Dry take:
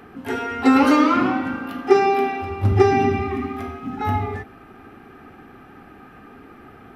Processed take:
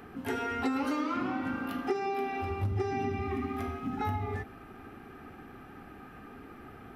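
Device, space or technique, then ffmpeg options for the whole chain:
ASMR close-microphone chain: -af "lowshelf=f=110:g=4.5,acompressor=threshold=-24dB:ratio=6,highshelf=f=6.5k:g=4.5,volume=-5dB"

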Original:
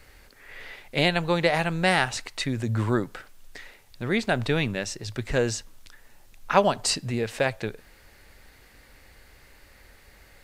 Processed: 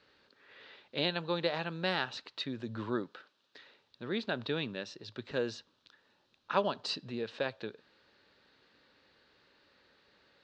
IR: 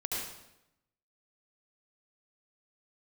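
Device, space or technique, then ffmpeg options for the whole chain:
kitchen radio: -filter_complex "[0:a]highpass=200,equalizer=f=730:t=q:w=4:g=-7,equalizer=f=2.1k:t=q:w=4:g=-10,equalizer=f=3.9k:t=q:w=4:g=5,lowpass=f=4.5k:w=0.5412,lowpass=f=4.5k:w=1.3066,asettb=1/sr,asplit=3[a][b][c];[a]atrim=end=3.074[d];[b]atrim=start=3.07:end=3.58,asetpts=PTS-STARTPTS,afade=t=in:d=0.004:c=qsin,afade=t=out:st=0.506:d=0.004:c=qsin,highpass=f=270:p=1[e];[c]atrim=start=3.576[f];[d][e]acrossfade=d=0.004:c1=hsin:c2=qsin[g];[g][f]acrossfade=d=0.004:c1=qsin:c2=hsin,volume=-8dB"

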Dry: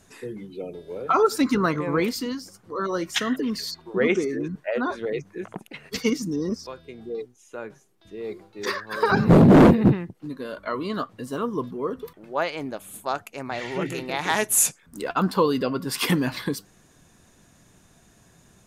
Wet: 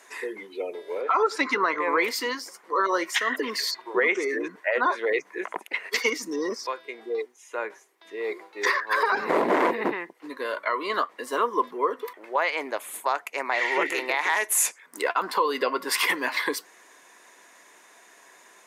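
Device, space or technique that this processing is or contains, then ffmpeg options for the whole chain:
laptop speaker: -filter_complex "[0:a]asettb=1/sr,asplit=3[a][b][c];[a]atrim=end=1.014[d];[b]atrim=start=1.01:end=1.88,asetpts=PTS-STARTPTS,afade=t=in:d=0.004:c=qsin,afade=t=out:st=0.866:d=0.004:c=qsin,lowpass=6k[e];[c]atrim=start=1.876[f];[d][e]acrossfade=d=0.004:c1=hsin:c2=qsin[g];[g][f]acrossfade=d=0.004:c1=qsin:c2=hsin,highpass=f=370:w=0.5412,highpass=f=370:w=1.3066,equalizer=f=1k:t=o:w=0.32:g=9,equalizer=f=2k:t=o:w=0.54:g=11,alimiter=limit=-16dB:level=0:latency=1:release=250,volume=3.5dB"

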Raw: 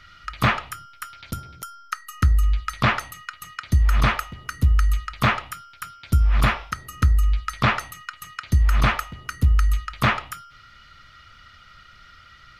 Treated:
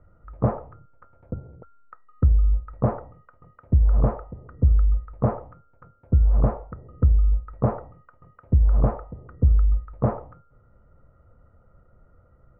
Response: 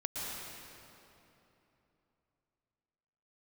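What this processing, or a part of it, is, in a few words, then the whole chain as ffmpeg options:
under water: -af "lowpass=f=790:w=0.5412,lowpass=f=790:w=1.3066,equalizer=f=490:t=o:w=0.41:g=10"

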